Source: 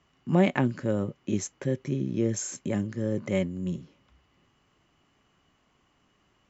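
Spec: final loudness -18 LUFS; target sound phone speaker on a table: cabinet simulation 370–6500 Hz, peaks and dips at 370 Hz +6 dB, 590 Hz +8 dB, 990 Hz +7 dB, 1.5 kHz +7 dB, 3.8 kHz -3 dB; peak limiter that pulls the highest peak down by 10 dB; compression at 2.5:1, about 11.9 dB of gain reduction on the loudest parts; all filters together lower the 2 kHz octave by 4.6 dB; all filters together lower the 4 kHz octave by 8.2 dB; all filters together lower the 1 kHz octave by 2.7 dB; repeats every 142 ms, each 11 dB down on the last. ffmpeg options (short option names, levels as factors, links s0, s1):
-af "equalizer=f=1000:t=o:g=-9,equalizer=f=2000:t=o:g=-5,equalizer=f=4000:t=o:g=-8.5,acompressor=threshold=0.0158:ratio=2.5,alimiter=level_in=2.51:limit=0.0631:level=0:latency=1,volume=0.398,highpass=f=370:w=0.5412,highpass=f=370:w=1.3066,equalizer=f=370:t=q:w=4:g=6,equalizer=f=590:t=q:w=4:g=8,equalizer=f=990:t=q:w=4:g=7,equalizer=f=1500:t=q:w=4:g=7,equalizer=f=3800:t=q:w=4:g=-3,lowpass=f=6500:w=0.5412,lowpass=f=6500:w=1.3066,aecho=1:1:142|284|426:0.282|0.0789|0.0221,volume=20"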